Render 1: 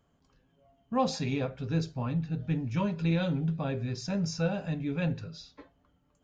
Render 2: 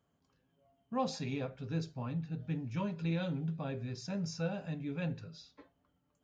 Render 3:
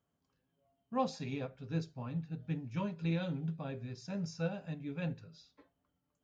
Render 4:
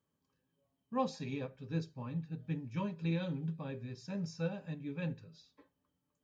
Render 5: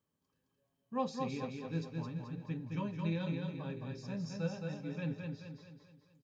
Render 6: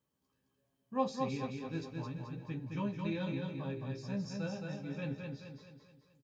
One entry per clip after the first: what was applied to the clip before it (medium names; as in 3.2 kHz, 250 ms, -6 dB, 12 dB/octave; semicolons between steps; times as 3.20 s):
high-pass 74 Hz; trim -6.5 dB
upward expansion 1.5:1, over -44 dBFS; trim +1.5 dB
comb of notches 700 Hz
feedback delay 216 ms, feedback 47%, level -4 dB; trim -1.5 dB
doubling 15 ms -5 dB